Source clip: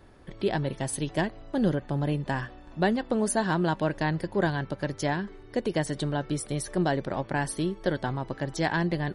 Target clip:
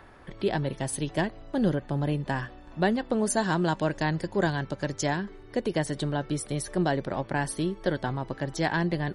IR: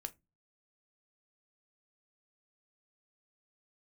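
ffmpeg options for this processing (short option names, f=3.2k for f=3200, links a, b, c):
-filter_complex "[0:a]acrossover=split=720|2600[a][b][c];[b]acompressor=mode=upward:threshold=-47dB:ratio=2.5[d];[a][d][c]amix=inputs=3:normalize=0,asettb=1/sr,asplit=3[e][f][g];[e]atrim=end=3.304[h];[f]atrim=start=3.3:end=5.19,asetpts=PTS-STARTPTS,afade=t=in:d=0.004:c=qsin,afade=t=out:st=1.886:d=0.004:c=qsin,lowpass=f=7.5k:t=q:w=2.7[i];[g]atrim=start=5.186[j];[h][i]acrossfade=d=0.004:c1=hsin:c2=qsin[k];[k][j]acrossfade=d=0.004:c1=qsin:c2=hsin"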